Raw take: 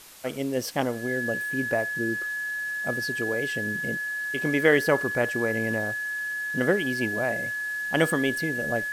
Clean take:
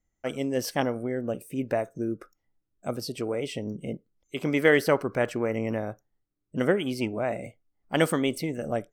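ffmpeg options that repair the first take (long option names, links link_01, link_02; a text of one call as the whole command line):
ffmpeg -i in.wav -af "bandreject=frequency=1700:width=30,afwtdn=0.0045" out.wav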